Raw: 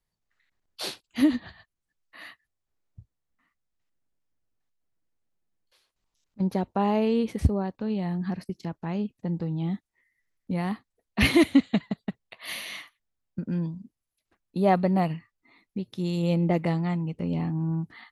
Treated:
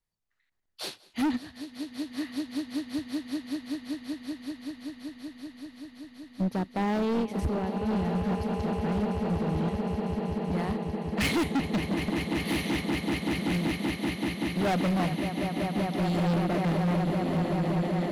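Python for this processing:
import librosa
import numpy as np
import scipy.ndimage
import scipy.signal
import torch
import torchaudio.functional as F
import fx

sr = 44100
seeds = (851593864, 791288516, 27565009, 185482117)

p1 = x + fx.echo_swell(x, sr, ms=191, loudest=8, wet_db=-11, dry=0)
p2 = np.clip(p1, -10.0 ** (-24.0 / 20.0), 10.0 ** (-24.0 / 20.0))
p3 = fx.upward_expand(p2, sr, threshold_db=-36.0, expansion=1.5)
y = F.gain(torch.from_numpy(p3), 1.0).numpy()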